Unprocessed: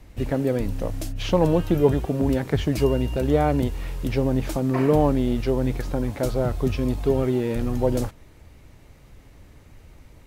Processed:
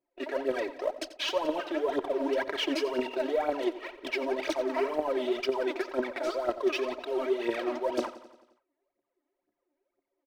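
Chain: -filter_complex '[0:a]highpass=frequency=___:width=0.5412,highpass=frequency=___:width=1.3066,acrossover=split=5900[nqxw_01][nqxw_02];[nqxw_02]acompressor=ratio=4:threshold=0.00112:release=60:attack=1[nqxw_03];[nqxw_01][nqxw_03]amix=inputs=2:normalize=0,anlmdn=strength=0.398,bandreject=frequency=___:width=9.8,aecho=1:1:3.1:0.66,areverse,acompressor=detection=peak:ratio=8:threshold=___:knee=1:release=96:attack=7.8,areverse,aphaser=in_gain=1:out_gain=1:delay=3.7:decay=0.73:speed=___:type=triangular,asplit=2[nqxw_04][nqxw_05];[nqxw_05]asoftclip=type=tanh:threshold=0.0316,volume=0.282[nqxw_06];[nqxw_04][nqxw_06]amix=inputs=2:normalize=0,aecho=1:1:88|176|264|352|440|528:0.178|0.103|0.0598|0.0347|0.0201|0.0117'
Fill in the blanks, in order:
410, 410, 7.1k, 0.0251, 2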